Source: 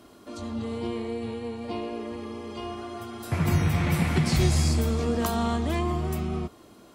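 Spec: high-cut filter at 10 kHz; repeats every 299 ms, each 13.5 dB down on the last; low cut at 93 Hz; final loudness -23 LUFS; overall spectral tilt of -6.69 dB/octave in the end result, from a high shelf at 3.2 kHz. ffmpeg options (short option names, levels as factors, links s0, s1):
-af "highpass=93,lowpass=10000,highshelf=f=3200:g=-8.5,aecho=1:1:299|598:0.211|0.0444,volume=2.11"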